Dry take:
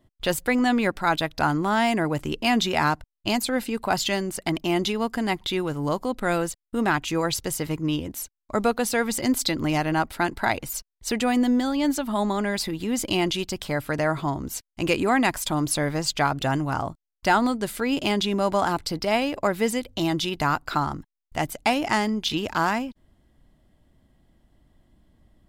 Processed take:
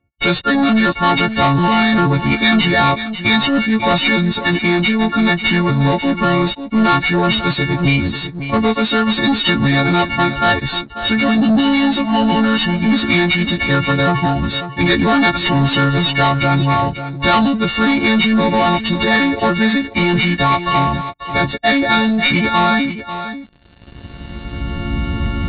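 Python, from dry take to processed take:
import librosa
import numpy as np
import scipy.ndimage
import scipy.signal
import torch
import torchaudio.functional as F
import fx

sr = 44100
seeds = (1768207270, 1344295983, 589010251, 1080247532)

p1 = fx.freq_snap(x, sr, grid_st=4)
p2 = fx.recorder_agc(p1, sr, target_db=-12.0, rise_db_per_s=14.0, max_gain_db=30)
p3 = scipy.signal.sosfilt(scipy.signal.butter(2, 50.0, 'highpass', fs=sr, output='sos'), p2)
p4 = fx.low_shelf(p3, sr, hz=200.0, db=9.5)
p5 = fx.leveller(p4, sr, passes=3)
p6 = fx.formant_shift(p5, sr, semitones=-3)
p7 = fx.brickwall_lowpass(p6, sr, high_hz=4500.0)
p8 = p7 + fx.echo_single(p7, sr, ms=542, db=-11.0, dry=0)
y = p8 * 10.0 ** (-3.5 / 20.0)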